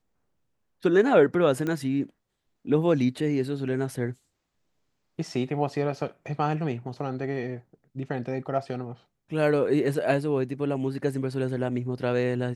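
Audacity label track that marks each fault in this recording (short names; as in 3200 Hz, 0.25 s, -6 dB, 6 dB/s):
1.670000	1.670000	pop -18 dBFS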